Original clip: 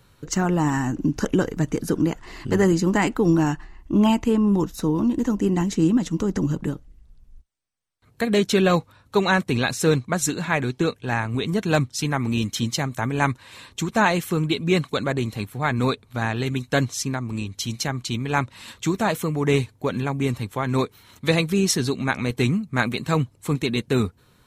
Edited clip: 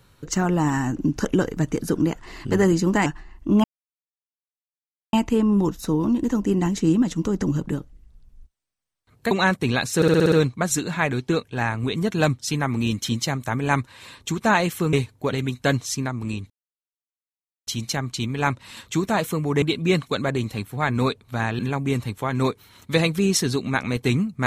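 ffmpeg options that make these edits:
-filter_complex "[0:a]asplit=15[a][b][c][d][e][f][g][h][i][j][k][l][m][n][o];[a]atrim=end=3.062[p];[b]atrim=start=3.498:end=4.08,asetpts=PTS-STARTPTS,afade=t=out:st=0.578:d=0.004:c=hsin,apad=pad_dur=1.49[q];[c]atrim=start=4.08:end=8.262,asetpts=PTS-STARTPTS,afade=t=in:d=0.004:c=hsin[r];[d]atrim=start=9.178:end=9.892[s];[e]atrim=start=9.828:end=9.892[t];[f]atrim=start=9.828:end=9.892[u];[g]atrim=start=9.828:end=9.892[v];[h]atrim=start=9.828:end=9.892[w];[i]atrim=start=9.828:end=9.892[x];[j]atrim=start=9.828:end=14.442[y];[k]atrim=start=19.528:end=19.932[z];[l]atrim=start=16.408:end=17.58,asetpts=PTS-STARTPTS,afade=t=out:st=1.168:d=0.004:c=hsin,apad=pad_dur=1.17[aa];[m]atrim=start=17.58:end=19.532,asetpts=PTS-STARTPTS,afade=t=in:d=0.004:c=hsin[ab];[n]atrim=start=14.438:end=16.412[ac];[o]atrim=start=19.928[ad];[q][r]concat=n=2:v=0:a=1[ae];[p][ae]acrossfade=d=0.004:c1=hsin:c2=hsin[af];[af][s]acrossfade=d=0.004:c1=hsin:c2=hsin[ag];[ag][t]acrossfade=d=0.004:c1=hsin:c2=hsin[ah];[ah][u]acrossfade=d=0.004:c1=hsin:c2=hsin[ai];[ai][v]acrossfade=d=0.004:c1=hsin:c2=hsin[aj];[aj][w]acrossfade=d=0.004:c1=hsin:c2=hsin[ak];[ak][x]acrossfade=d=0.004:c1=hsin:c2=hsin[al];[al][y]acrossfade=d=0.004:c1=hsin:c2=hsin[am];[am][z]acrossfade=d=0.004:c1=hsin:c2=hsin[an];[aa][ab]concat=n=2:v=0:a=1[ao];[an][ao]acrossfade=d=0.004:c1=hsin:c2=hsin[ap];[ap][ac]acrossfade=d=0.004:c1=hsin:c2=hsin[aq];[aq][ad]acrossfade=d=0.004:c1=hsin:c2=hsin"

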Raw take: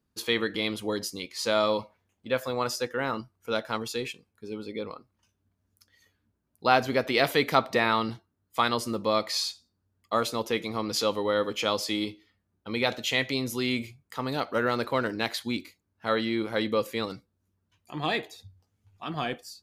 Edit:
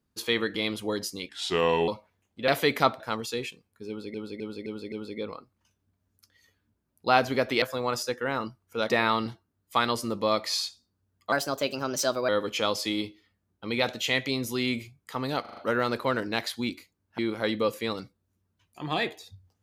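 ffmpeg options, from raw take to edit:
-filter_complex "[0:a]asplit=18[a][b][c][d][e][f][g][h][i][j][k][l][m][n][o][p][q][r];[a]atrim=end=1.294[s];[b]atrim=start=1.29:end=1.75,asetpts=PTS-STARTPTS,asetrate=34398,aresample=44100[t];[c]atrim=start=1.746:end=2.352[u];[d]atrim=start=7.198:end=7.722[v];[e]atrim=start=3.618:end=4.762[w];[f]atrim=start=4.498:end=4.762[x];[g]atrim=start=4.498:end=4.762[y];[h]atrim=start=4.498:end=4.762[z];[i]atrim=start=4.498:end=7.202[aa];[j]atrim=start=2.348:end=3.622[ab];[k]atrim=start=7.718:end=10.154[ac];[l]atrim=start=10.15:end=11.32,asetpts=PTS-STARTPTS,asetrate=53361,aresample=44100,atrim=end_sample=42642,asetpts=PTS-STARTPTS[ad];[m]atrim=start=11.316:end=14.482[ae];[n]atrim=start=14.438:end=14.482[af];[o]atrim=start=14.438:end=14.482[ag];[p]atrim=start=14.438:end=14.482[ah];[q]atrim=start=14.438:end=16.062[ai];[r]atrim=start=16.308[aj];[s][t]acrossfade=d=0.004:c1=hsin:c2=hsin[ak];[ak][u]acrossfade=d=0.004:c1=hsin:c2=hsin[al];[al][v]acrossfade=d=0.004:c1=hsin:c2=hsin[am];[am][w]acrossfade=d=0.004:c1=hsin:c2=hsin[an];[an][x]acrossfade=d=0.004:c1=hsin:c2=hsin[ao];[ao][y]acrossfade=d=0.004:c1=hsin:c2=hsin[ap];[ap][z]acrossfade=d=0.004:c1=hsin:c2=hsin[aq];[aq][aa]acrossfade=d=0.004:c1=hsin:c2=hsin[ar];[ar][ab]acrossfade=d=0.004:c1=hsin:c2=hsin[as];[as][ac]acrossfade=d=0.004:c1=hsin:c2=hsin[at];[at][ad]acrossfade=d=0.004:c1=hsin:c2=hsin[au];[au][ae]acrossfade=d=0.004:c1=hsin:c2=hsin[av];[av][af]acrossfade=d=0.004:c1=hsin:c2=hsin[aw];[aw][ag]acrossfade=d=0.004:c1=hsin:c2=hsin[ax];[ax][ah]acrossfade=d=0.004:c1=hsin:c2=hsin[ay];[ay][ai]acrossfade=d=0.004:c1=hsin:c2=hsin[az];[az][aj]acrossfade=d=0.004:c1=hsin:c2=hsin"

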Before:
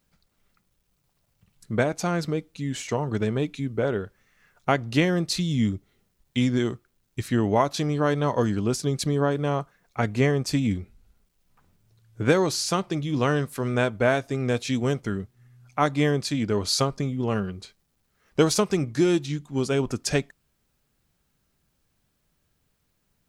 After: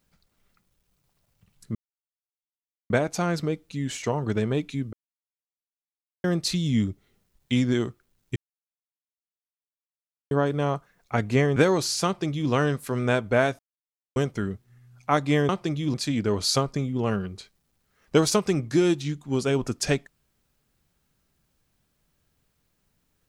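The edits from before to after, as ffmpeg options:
-filter_complex "[0:a]asplit=11[a][b][c][d][e][f][g][h][i][j][k];[a]atrim=end=1.75,asetpts=PTS-STARTPTS,afade=t=out:st=1.746:d=0.004:c=hsin,apad=pad_dur=1.15[l];[b]atrim=start=1.75:end=3.78,asetpts=PTS-STARTPTS,afade=t=in:d=0.004:c=hsin,afade=t=out:st=2.026:d=0.004:c=hsin[m];[c]atrim=start=3.78:end=5.09,asetpts=PTS-STARTPTS,volume=0[n];[d]atrim=start=5.09:end=7.21,asetpts=PTS-STARTPTS,afade=t=in:d=0.004:c=hsin,afade=t=out:st=2.116:d=0.004:c=hsin[o];[e]atrim=start=7.21:end=9.16,asetpts=PTS-STARTPTS,volume=0[p];[f]atrim=start=9.16:end=10.412,asetpts=PTS-STARTPTS,afade=t=in:d=0.004:c=hsin[q];[g]atrim=start=12.248:end=14.28,asetpts=PTS-STARTPTS,afade=t=out:st=2.028:d=0.004:c=hsin[r];[h]atrim=start=14.28:end=14.85,asetpts=PTS-STARTPTS,volume=0[s];[i]atrim=start=14.85:end=16.182,asetpts=PTS-STARTPTS,afade=t=in:d=0.004:c=hsin[t];[j]atrim=start=12.748:end=13.202[u];[k]atrim=start=16.178[v];[l][m][n][o][p][q]concat=n=6:v=0:a=1[w];[r][s][t]concat=n=3:v=0:a=1[x];[w][x]acrossfade=d=0.004:c1=hsin:c2=hsin[y];[y][u]acrossfade=d=0.004:c1=hsin:c2=hsin[z];[z][v]acrossfade=d=0.004:c1=hsin:c2=hsin"

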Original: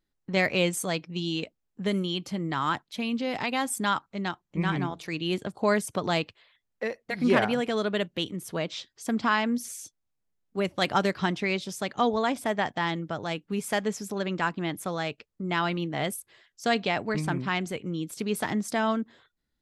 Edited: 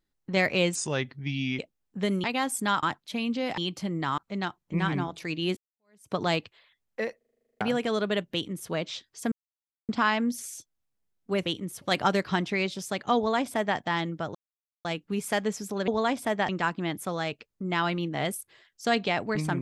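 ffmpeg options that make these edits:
-filter_complex "[0:a]asplit=25[a][b][c][d][e][f][g][h][i][j][k][l][m][n][o][p][q][r][s][t][u][v][w][x][y];[a]atrim=end=0.754[z];[b]atrim=start=0.75:end=1.42,asetpts=PTS-STARTPTS,asetrate=35280,aresample=44100[aa];[c]atrim=start=1.416:end=2.072[ab];[d]atrim=start=3.418:end=4.012[ac];[e]atrim=start=2.668:end=3.422[ad];[f]atrim=start=2.068:end=2.672[ae];[g]atrim=start=4.008:end=5.4,asetpts=PTS-STARTPTS,afade=t=out:st=1.388:d=0.004:c=hsin[af];[h]atrim=start=5.4:end=7.042,asetpts=PTS-STARTPTS,afade=t=in:d=0.57:c=exp[ag];[i]atrim=start=6.998:end=7.042[ah];[j]atrim=start=6.998:end=7.042[ai];[k]atrim=start=6.998:end=7.042[aj];[l]atrim=start=6.998:end=7.042[ak];[m]atrim=start=6.998:end=7.042[al];[n]atrim=start=6.998:end=7.042[am];[o]atrim=start=6.998:end=7.042[an];[p]atrim=start=6.998:end=7.042[ao];[q]atrim=start=6.998:end=7.042[ap];[r]atrim=start=6.998:end=7.042[aq];[s]atrim=start=7.438:end=9.15,asetpts=PTS-STARTPTS,afade=t=out:st=1.708:d=0.004:c=hsin,apad=pad_dur=0.57[ar];[t]atrim=start=9.15:end=10.722,asetpts=PTS-STARTPTS,afade=t=in:d=0.004:c=hsin[as];[u]atrim=start=8.168:end=8.532[at];[v]atrim=start=10.718:end=13.25,asetpts=PTS-STARTPTS,afade=t=out:st=2.528:d=0.004:c=hsin,apad=pad_dur=0.5[au];[w]atrim=start=13.25:end=14.282,asetpts=PTS-STARTPTS,afade=t=in:d=0.004:c=hsin[av];[x]atrim=start=12.068:end=12.682[aw];[y]atrim=start=14.278[ax];[z][aa]acrossfade=d=0.004:c1=hsin:c2=hsin[ay];[ay][ab]acrossfade=d=0.004:c1=hsin:c2=hsin[az];[az][ac]acrossfade=d=0.004:c1=hsin:c2=hsin[ba];[ba][ad]acrossfade=d=0.004:c1=hsin:c2=hsin[bb];[bb][ae]acrossfade=d=0.004:c1=hsin:c2=hsin[bc];[af][ag]concat=n=2:v=0:a=1[bd];[bc][bd]acrossfade=d=0.004:c1=hsin:c2=hsin[be];[be][ah]acrossfade=d=0.004:c1=hsin:c2=hsin[bf];[bf][ai]acrossfade=d=0.004:c1=hsin:c2=hsin[bg];[bg][aj]acrossfade=d=0.004:c1=hsin:c2=hsin[bh];[bh][ak]acrossfade=d=0.004:c1=hsin:c2=hsin[bi];[bi][al]acrossfade=d=0.004:c1=hsin:c2=hsin[bj];[bj][am]acrossfade=d=0.004:c1=hsin:c2=hsin[bk];[bk][an]acrossfade=d=0.004:c1=hsin:c2=hsin[bl];[bl][ao]acrossfade=d=0.004:c1=hsin:c2=hsin[bm];[bm][ap]acrossfade=d=0.004:c1=hsin:c2=hsin[bn];[bn][aq]acrossfade=d=0.004:c1=hsin:c2=hsin[bo];[ar][as]concat=n=2:v=0:a=1[bp];[bo][bp]acrossfade=d=0.004:c1=hsin:c2=hsin[bq];[bq][at]acrossfade=d=0.004:c1=hsin:c2=hsin[br];[au][av]concat=n=2:v=0:a=1[bs];[br][bs]acrossfade=d=0.004:c1=hsin:c2=hsin[bt];[bt][aw]acrossfade=d=0.004:c1=hsin:c2=hsin[bu];[bu][ax]acrossfade=d=0.004:c1=hsin:c2=hsin"

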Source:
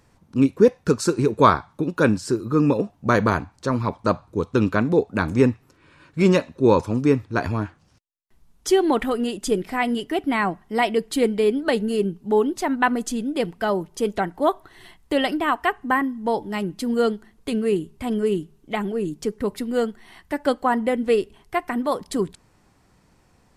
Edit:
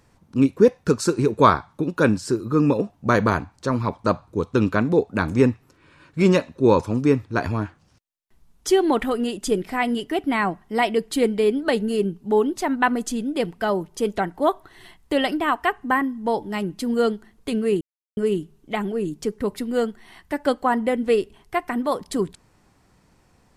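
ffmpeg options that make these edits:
-filter_complex "[0:a]asplit=3[a][b][c];[a]atrim=end=17.81,asetpts=PTS-STARTPTS,afade=t=out:st=17.806:d=0.004:c=hsin[d];[b]atrim=start=17.81:end=18.17,asetpts=PTS-STARTPTS,volume=0[e];[c]atrim=start=18.17,asetpts=PTS-STARTPTS,afade=t=in:d=0.004:c=hsin[f];[d][e][f]concat=n=3:v=0:a=1"

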